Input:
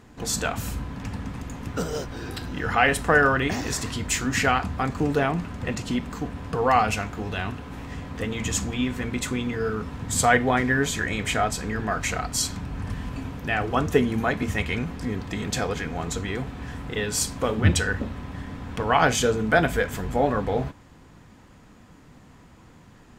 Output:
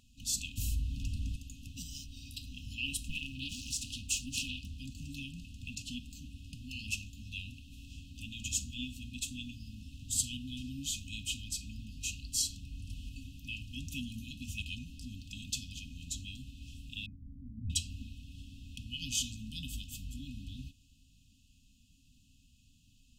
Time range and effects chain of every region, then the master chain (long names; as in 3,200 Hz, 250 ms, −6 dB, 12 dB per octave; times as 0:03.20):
0:00.57–0:01.36: low-shelf EQ 130 Hz +9.5 dB + envelope flattener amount 50%
0:03.08–0:04.80: parametric band 560 Hz +5 dB 0.82 octaves + mains-hum notches 50/100/150 Hz + highs frequency-modulated by the lows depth 0.7 ms
0:17.06–0:17.70: hard clipping −20.5 dBFS + linear-phase brick-wall low-pass 1,100 Hz
whole clip: brick-wall band-stop 290–2,500 Hz; parametric band 180 Hz −14 dB 2 octaves; level −6 dB